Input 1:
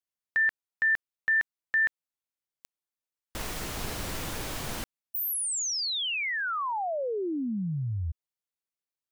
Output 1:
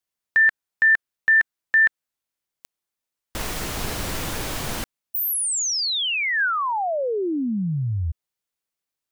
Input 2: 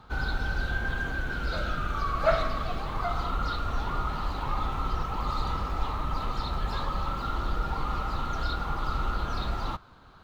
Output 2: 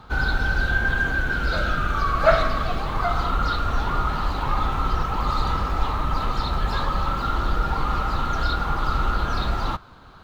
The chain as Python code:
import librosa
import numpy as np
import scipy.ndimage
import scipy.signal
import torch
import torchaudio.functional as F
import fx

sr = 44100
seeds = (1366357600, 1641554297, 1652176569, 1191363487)

y = fx.dynamic_eq(x, sr, hz=1600.0, q=4.9, threshold_db=-45.0, ratio=4.0, max_db=4)
y = F.gain(torch.from_numpy(y), 6.5).numpy()